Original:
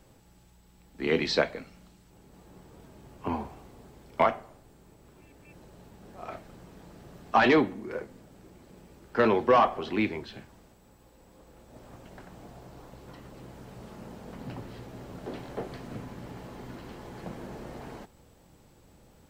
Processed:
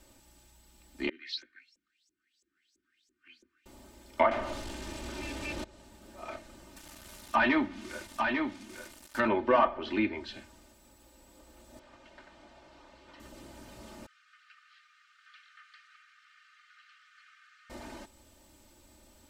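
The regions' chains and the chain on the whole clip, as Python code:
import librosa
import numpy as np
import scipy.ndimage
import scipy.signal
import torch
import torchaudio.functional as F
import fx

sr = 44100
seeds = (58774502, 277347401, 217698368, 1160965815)

y = fx.chain(x, sr, fx.ellip_bandstop(low_hz=340.0, high_hz=1500.0, order=3, stop_db=50),
    fx.filter_lfo_bandpass(shape='saw_up', hz=3.0, low_hz=460.0, high_hz=6900.0, q=7.0), at=(1.09, 3.66))
y = fx.chain(y, sr, fx.crossing_spikes(level_db=-37.0),
    fx.leveller(passes=5), at=(4.31, 5.64))
y = fx.chain(y, sr, fx.peak_eq(hz=450.0, db=-9.5, octaves=0.82),
    fx.quant_dither(seeds[0], bits=8, dither='none'),
    fx.echo_single(ms=846, db=-4.5), at=(6.76, 9.28))
y = fx.chain(y, sr, fx.lowpass(hz=3800.0, slope=12),
    fx.low_shelf(hz=470.0, db=-10.0), at=(11.79, 13.2))
y = fx.chain(y, sr, fx.cheby1_highpass(hz=1200.0, order=10),
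    fx.spacing_loss(db_at_10k=27), at=(14.06, 17.7))
y = fx.high_shelf(y, sr, hz=2200.0, db=9.0)
y = y + 0.86 * np.pad(y, (int(3.3 * sr / 1000.0), 0))[:len(y)]
y = fx.env_lowpass_down(y, sr, base_hz=2100.0, full_db=-19.5)
y = y * librosa.db_to_amplitude(-5.5)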